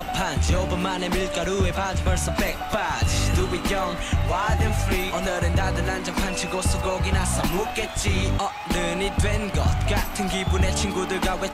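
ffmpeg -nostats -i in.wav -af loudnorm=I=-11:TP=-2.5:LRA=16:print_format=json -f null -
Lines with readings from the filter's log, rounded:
"input_i" : "-24.2",
"input_tp" : "-12.0",
"input_lra" : "0.7",
"input_thresh" : "-34.2",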